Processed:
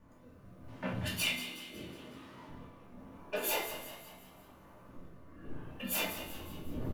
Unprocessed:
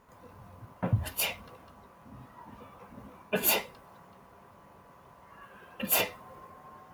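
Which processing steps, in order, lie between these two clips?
wind noise 320 Hz -47 dBFS; 0.68–2.49 weighting filter D; rotary speaker horn 0.8 Hz; 3.21–3.66 resonant low shelf 260 Hz -12.5 dB, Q 1.5; soft clip -25.5 dBFS, distortion -10 dB; resonator 110 Hz, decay 1.9 s, mix 70%; on a send: frequency-shifting echo 0.184 s, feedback 51%, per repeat +69 Hz, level -11.5 dB; on the sum: shoebox room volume 280 m³, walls furnished, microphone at 2.5 m; gain +3 dB

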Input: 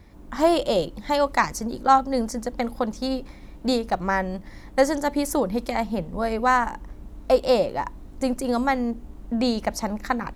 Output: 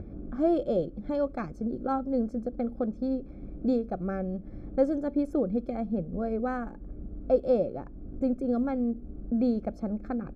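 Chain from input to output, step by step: upward compressor, threshold -24 dBFS; running mean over 46 samples; low shelf 110 Hz -7 dB; mismatched tape noise reduction decoder only

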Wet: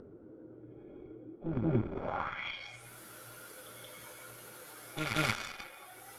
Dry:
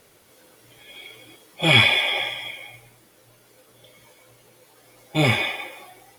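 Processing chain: reverse echo 0.178 s -6.5 dB; added harmonics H 3 -14 dB, 6 -26 dB, 7 -26 dB, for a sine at -1 dBFS; low-pass sweep 340 Hz -> 12000 Hz, 1.9–2.89; in parallel at -2 dB: upward compressor, threshold -27 dBFS; on the sum: bell 1400 Hz +13.5 dB 0.31 oct; compressor 2.5:1, threshold -31 dBFS, peak gain reduction 11.5 dB

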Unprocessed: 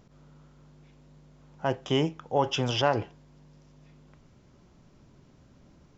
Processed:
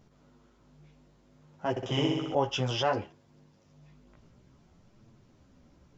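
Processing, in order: chorus voices 2, 0.59 Hz, delay 13 ms, depth 4.4 ms; 1.7–2.35 flutter echo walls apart 10.8 m, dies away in 1.2 s

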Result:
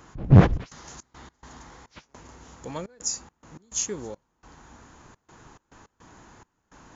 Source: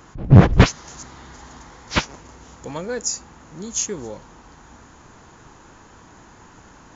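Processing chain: step gate "xxxx.xx.x.xxx..x" 105 bpm -24 dB; gain -4 dB

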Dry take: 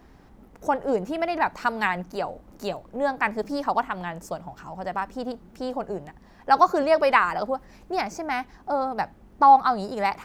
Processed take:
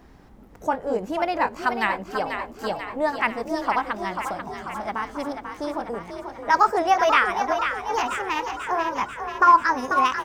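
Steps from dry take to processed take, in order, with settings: gliding pitch shift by +4.5 st starting unshifted; frequency-shifting echo 0.49 s, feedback 60%, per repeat +41 Hz, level -7.5 dB; gain +1.5 dB

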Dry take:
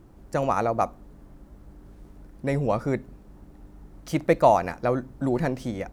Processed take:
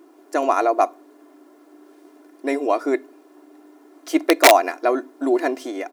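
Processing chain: comb 2.9 ms, depth 62%; wrapped overs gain 8 dB; brick-wall FIR high-pass 260 Hz; gain +4.5 dB

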